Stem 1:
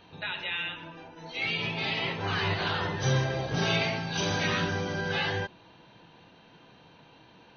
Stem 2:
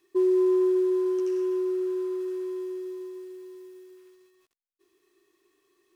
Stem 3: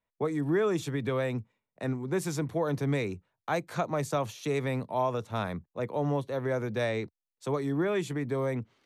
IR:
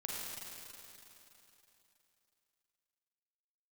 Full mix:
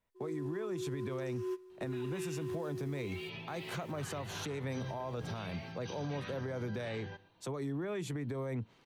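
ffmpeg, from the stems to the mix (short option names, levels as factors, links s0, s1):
-filter_complex "[0:a]adelay=1700,volume=0.188,asplit=2[s0][s1];[s1]volume=0.0944[s2];[1:a]dynaudnorm=f=110:g=9:m=5.01,alimiter=limit=0.178:level=0:latency=1,equalizer=f=240:w=0.8:g=-13.5,volume=0.355[s3];[2:a]acompressor=threshold=0.0251:ratio=6,volume=1.19,asplit=2[s4][s5];[s5]apad=whole_len=262619[s6];[s3][s6]sidechaingate=range=0.1:threshold=0.00224:ratio=16:detection=peak[s7];[s2]aecho=0:1:124:1[s8];[s0][s7][s4][s8]amix=inputs=4:normalize=0,lowshelf=f=180:g=5,alimiter=level_in=2.11:limit=0.0631:level=0:latency=1:release=130,volume=0.473"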